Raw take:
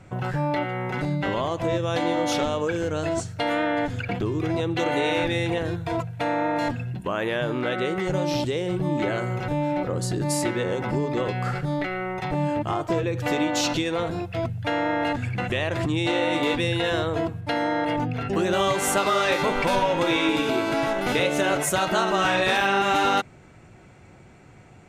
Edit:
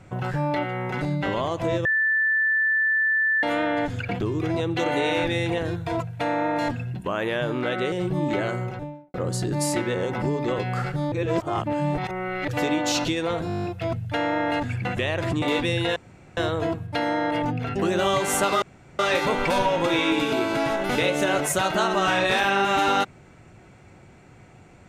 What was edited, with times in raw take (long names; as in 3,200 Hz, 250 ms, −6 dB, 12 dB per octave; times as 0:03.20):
0:01.85–0:03.43: beep over 1,760 Hz −18.5 dBFS
0:07.92–0:08.61: remove
0:09.15–0:09.83: fade out and dull
0:11.81–0:13.17: reverse
0:14.17: stutter 0.02 s, 9 plays
0:15.95–0:16.37: remove
0:16.91: splice in room tone 0.41 s
0:19.16: splice in room tone 0.37 s